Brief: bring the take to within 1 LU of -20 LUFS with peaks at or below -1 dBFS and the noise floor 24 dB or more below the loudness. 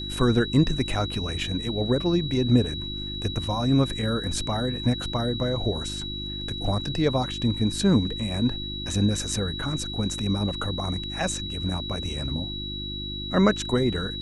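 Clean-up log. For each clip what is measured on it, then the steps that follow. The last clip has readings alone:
hum 50 Hz; harmonics up to 350 Hz; hum level -33 dBFS; steady tone 3900 Hz; tone level -33 dBFS; loudness -26.0 LUFS; peak -6.5 dBFS; loudness target -20.0 LUFS
-> de-hum 50 Hz, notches 7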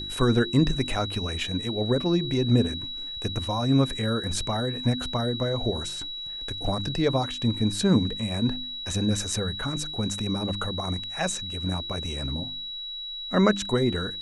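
hum none; steady tone 3900 Hz; tone level -33 dBFS
-> notch 3900 Hz, Q 30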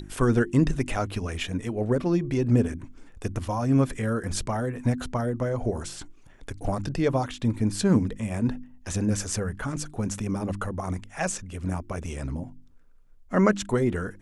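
steady tone none; loudness -27.0 LUFS; peak -8.5 dBFS; loudness target -20.0 LUFS
-> gain +7 dB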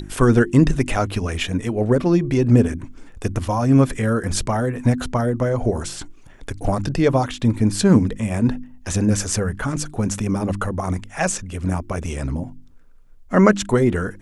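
loudness -20.0 LUFS; peak -1.5 dBFS; noise floor -44 dBFS

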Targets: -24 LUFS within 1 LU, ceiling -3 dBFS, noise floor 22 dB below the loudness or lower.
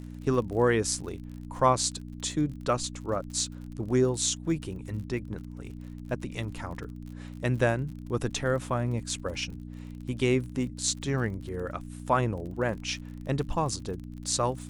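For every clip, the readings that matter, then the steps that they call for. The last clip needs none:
ticks 44/s; hum 60 Hz; harmonics up to 300 Hz; hum level -38 dBFS; loudness -30.0 LUFS; peak -9.5 dBFS; loudness target -24.0 LUFS
-> de-click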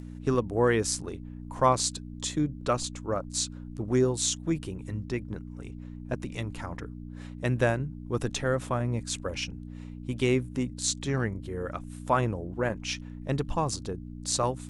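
ticks 0.20/s; hum 60 Hz; harmonics up to 300 Hz; hum level -38 dBFS
-> de-hum 60 Hz, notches 5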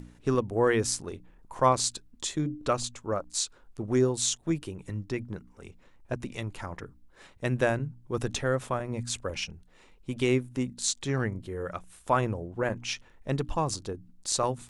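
hum none; loudness -30.0 LUFS; peak -9.5 dBFS; loudness target -24.0 LUFS
-> gain +6 dB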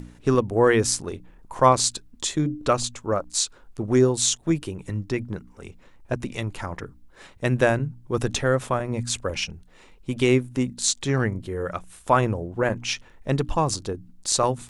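loudness -24.0 LUFS; peak -3.5 dBFS; noise floor -52 dBFS

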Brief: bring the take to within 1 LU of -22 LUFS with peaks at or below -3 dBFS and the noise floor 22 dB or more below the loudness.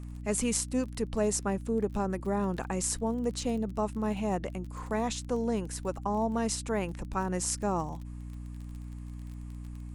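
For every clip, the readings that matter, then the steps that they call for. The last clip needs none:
ticks 29/s; hum 60 Hz; harmonics up to 300 Hz; hum level -38 dBFS; loudness -31.5 LUFS; peak -12.0 dBFS; loudness target -22.0 LUFS
-> de-click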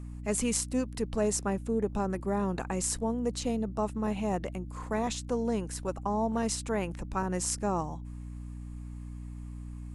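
ticks 0/s; hum 60 Hz; harmonics up to 300 Hz; hum level -38 dBFS
-> notches 60/120/180/240/300 Hz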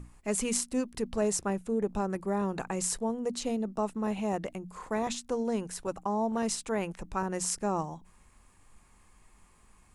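hum none; loudness -32.0 LUFS; peak -12.0 dBFS; loudness target -22.0 LUFS
-> gain +10 dB; limiter -3 dBFS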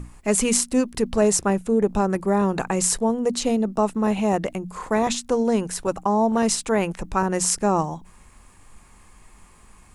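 loudness -22.0 LUFS; peak -3.0 dBFS; noise floor -51 dBFS

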